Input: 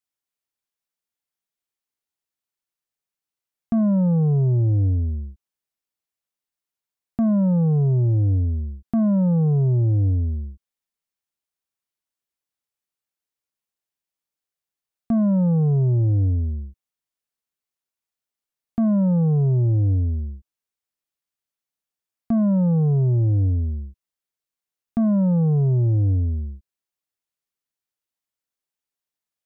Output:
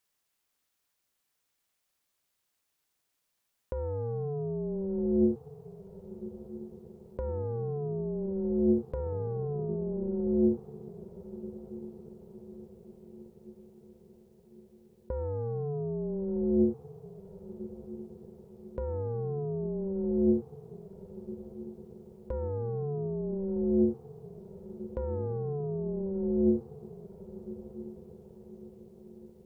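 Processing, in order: compressor with a negative ratio -30 dBFS, ratio -1; echo that smears into a reverb 1237 ms, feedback 52%, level -14.5 dB; ring modulator 290 Hz; trim +2 dB

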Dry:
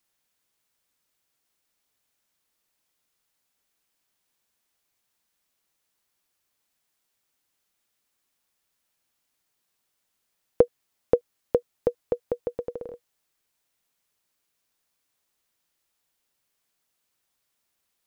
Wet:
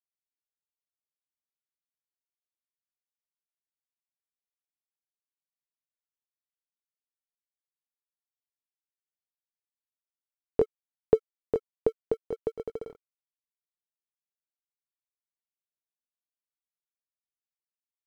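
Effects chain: pitch bend over the whole clip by -4 st ending unshifted; crossover distortion -52 dBFS

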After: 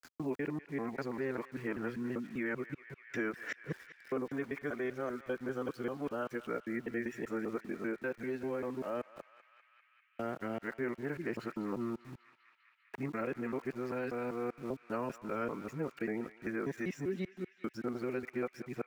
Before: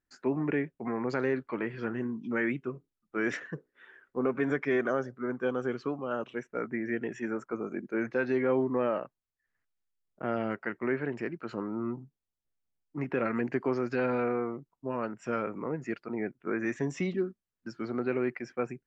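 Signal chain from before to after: time reversed locally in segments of 196 ms; gain riding within 5 dB 0.5 s; small samples zeroed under -49.5 dBFS; band-passed feedback delay 198 ms, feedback 73%, band-pass 2.5 kHz, level -13.5 dB; three bands compressed up and down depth 40%; trim -6 dB

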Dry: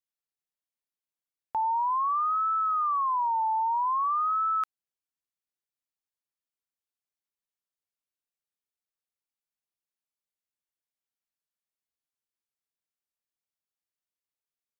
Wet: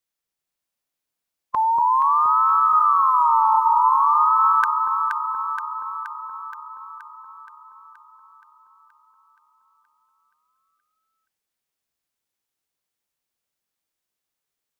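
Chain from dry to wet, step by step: formant shift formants +3 st; echo whose repeats swap between lows and highs 237 ms, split 940 Hz, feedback 79%, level -3 dB; trim +8 dB

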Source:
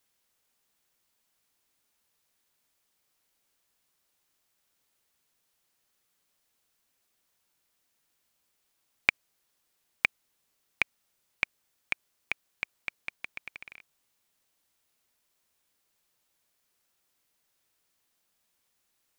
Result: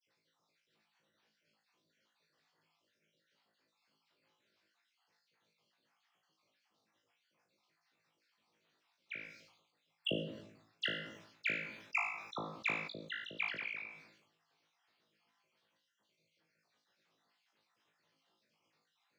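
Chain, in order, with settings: random holes in the spectrogram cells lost 56%; high-pass 120 Hz 24 dB/octave; peaking EQ 4.5 kHz +3.5 dB 0.56 oct; compressor with a negative ratio -29 dBFS, ratio -0.5; phase dispersion lows, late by 70 ms, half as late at 2.1 kHz; hard clipper -26.5 dBFS, distortion -9 dB; distance through air 210 m; flutter echo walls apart 3.2 m, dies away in 0.31 s; on a send at -14 dB: reverberation RT60 0.80 s, pre-delay 6 ms; on the sum: decay stretcher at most 67 dB/s; trim +1.5 dB

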